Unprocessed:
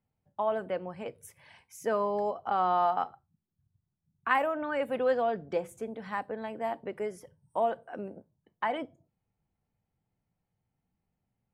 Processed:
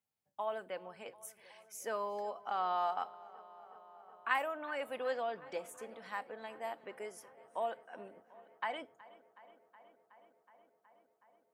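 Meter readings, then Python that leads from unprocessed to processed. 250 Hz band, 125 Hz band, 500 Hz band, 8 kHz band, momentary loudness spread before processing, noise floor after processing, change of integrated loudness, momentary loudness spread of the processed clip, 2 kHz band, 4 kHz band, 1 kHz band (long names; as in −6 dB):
−14.0 dB, below −15 dB, −9.5 dB, can't be measured, 14 LU, −77 dBFS, −8.0 dB, 20 LU, −4.5 dB, −2.0 dB, −7.5 dB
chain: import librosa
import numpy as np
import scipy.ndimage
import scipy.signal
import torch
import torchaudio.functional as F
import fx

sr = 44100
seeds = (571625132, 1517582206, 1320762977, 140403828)

p1 = fx.highpass(x, sr, hz=550.0, slope=6)
p2 = fx.high_shelf(p1, sr, hz=2600.0, db=8.5)
p3 = p2 + fx.echo_filtered(p2, sr, ms=370, feedback_pct=82, hz=4400.0, wet_db=-20.5, dry=0)
y = p3 * 10.0 ** (-7.0 / 20.0)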